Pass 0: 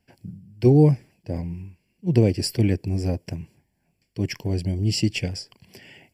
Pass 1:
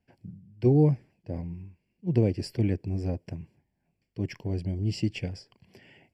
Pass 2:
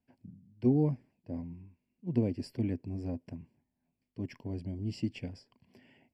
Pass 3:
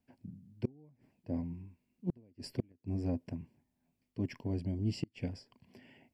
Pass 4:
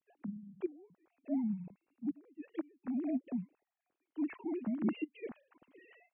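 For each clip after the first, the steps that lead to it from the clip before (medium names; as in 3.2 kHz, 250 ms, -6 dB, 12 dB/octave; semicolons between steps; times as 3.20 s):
low-pass 2.2 kHz 6 dB/octave; trim -5.5 dB
graphic EQ with 31 bands 250 Hz +12 dB, 630 Hz +3 dB, 1 kHz +6 dB, 6.3 kHz -3 dB; trim -9 dB
inverted gate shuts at -24 dBFS, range -34 dB; trim +2.5 dB
formants replaced by sine waves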